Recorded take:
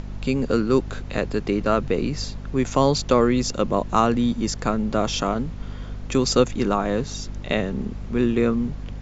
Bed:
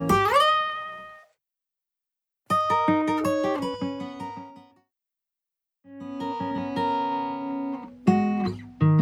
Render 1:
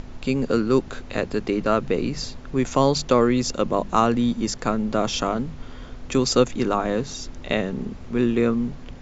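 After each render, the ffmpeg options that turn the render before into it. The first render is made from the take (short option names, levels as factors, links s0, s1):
-af "bandreject=f=50:t=h:w=6,bandreject=f=100:t=h:w=6,bandreject=f=150:t=h:w=6,bandreject=f=200:t=h:w=6"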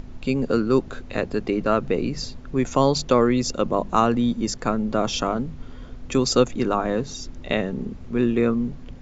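-af "afftdn=nr=6:nf=-39"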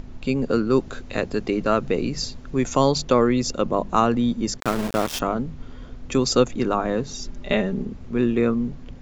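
-filter_complex "[0:a]asettb=1/sr,asplit=3[s0][s1][s2];[s0]atrim=end=0.794[s3];[s1]atrim=start=0.79:end=2.92,asetpts=PTS-STARTPTS,afade=t=in:d=0.004:c=qsin,afade=t=out:st=2.126:d=0.004:c=qsin,highshelf=f=4600:g=7[s4];[s2]atrim=start=2.916[s5];[s3][s4]acrossfade=d=0.004:c1=hsin:c2=qsin[s6];[s6][s5]acrossfade=d=0.004:c1=qsin:c2=hsin,asettb=1/sr,asplit=3[s7][s8][s9];[s7]atrim=end=4.604[s10];[s8]atrim=start=4.6:end=5.2,asetpts=PTS-STARTPTS,afade=t=in:d=0.004:c=qsin,afade=t=out:st=0.596:d=0.004:c=qsin,aeval=exprs='val(0)*gte(abs(val(0)),0.0668)':c=same[s11];[s9]atrim=start=5.196[s12];[s10][s11]acrossfade=d=0.004:c1=hsin:c2=qsin[s13];[s13][s12]acrossfade=d=0.004:c1=qsin:c2=hsin,asettb=1/sr,asplit=3[s14][s15][s16];[s14]atrim=end=7.134[s17];[s15]atrim=start=7.13:end=7.82,asetpts=PTS-STARTPTS,afade=t=in:d=0.004:c=qsin,afade=t=out:st=0.686:d=0.004:c=qsin,aecho=1:1:5:0.56,atrim=end_sample=30429[s18];[s16]atrim=start=7.816[s19];[s17][s18]acrossfade=d=0.004:c1=hsin:c2=qsin[s20];[s20][s19]acrossfade=d=0.004:c1=qsin:c2=hsin"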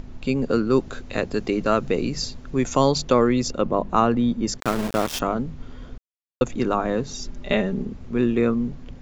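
-filter_complex "[0:a]asettb=1/sr,asplit=3[s0][s1][s2];[s0]atrim=end=1.344[s3];[s1]atrim=start=1.34:end=2.18,asetpts=PTS-STARTPTS,afade=t=in:d=0.004:c=qsin,afade=t=out:st=0.836:d=0.004:c=qsin,highshelf=f=7400:g=6[s4];[s2]atrim=start=2.176[s5];[s3][s4]acrossfade=d=0.004:c1=hsin:c2=qsin[s6];[s6][s5]acrossfade=d=0.004:c1=qsin:c2=hsin,asettb=1/sr,asplit=3[s7][s8][s9];[s7]atrim=end=3.484[s10];[s8]atrim=start=3.48:end=4.47,asetpts=PTS-STARTPTS,afade=t=in:d=0.004:c=qsin,afade=t=out:st=0.986:d=0.004:c=qsin,aemphasis=mode=reproduction:type=50fm[s11];[s9]atrim=start=4.466[s12];[s10][s11]acrossfade=d=0.004:c1=hsin:c2=qsin[s13];[s13][s12]acrossfade=d=0.004:c1=qsin:c2=hsin,asplit=3[s14][s15][s16];[s14]atrim=end=5.98,asetpts=PTS-STARTPTS,afade=t=out:st=5.976:d=0.004:c=hsin[s17];[s15]atrim=start=5.98:end=6.41,asetpts=PTS-STARTPTS,volume=0[s18];[s16]atrim=start=6.41,asetpts=PTS-STARTPTS,afade=t=in:d=0.004:c=hsin[s19];[s17][s18][s19]concat=n=3:v=0:a=1"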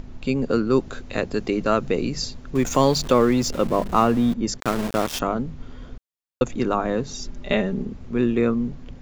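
-filter_complex "[0:a]asettb=1/sr,asplit=3[s0][s1][s2];[s0]atrim=end=2.554[s3];[s1]atrim=start=2.55:end=4.34,asetpts=PTS-STARTPTS,afade=t=in:d=0.004:c=qsin,afade=t=out:st=1.786:d=0.004:c=qsin,aeval=exprs='val(0)+0.5*0.0299*sgn(val(0))':c=same[s4];[s2]atrim=start=4.336[s5];[s3][s4]acrossfade=d=0.004:c1=hsin:c2=qsin[s6];[s6][s5]acrossfade=d=0.004:c1=qsin:c2=hsin"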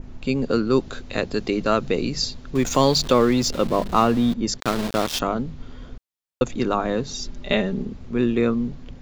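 -af "adynamicequalizer=threshold=0.00631:dfrequency=4000:dqfactor=1.5:tfrequency=4000:tqfactor=1.5:attack=5:release=100:ratio=0.375:range=3:mode=boostabove:tftype=bell"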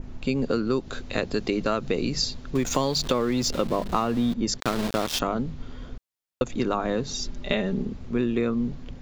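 -af "acompressor=threshold=0.1:ratio=6"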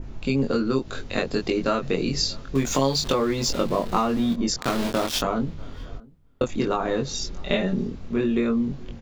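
-filter_complex "[0:a]asplit=2[s0][s1];[s1]adelay=22,volume=0.708[s2];[s0][s2]amix=inputs=2:normalize=0,asplit=2[s3][s4];[s4]adelay=641.4,volume=0.0631,highshelf=f=4000:g=-14.4[s5];[s3][s5]amix=inputs=2:normalize=0"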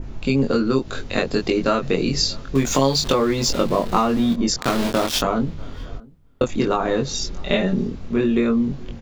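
-af "volume=1.58,alimiter=limit=0.708:level=0:latency=1"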